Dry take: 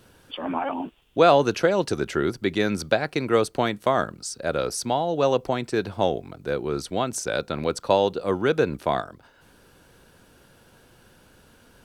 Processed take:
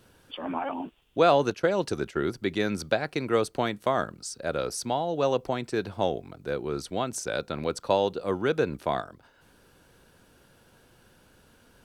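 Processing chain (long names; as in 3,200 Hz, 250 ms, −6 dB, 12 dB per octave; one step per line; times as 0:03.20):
0:01.50–0:02.21: noise gate −29 dBFS, range −12 dB
level −4 dB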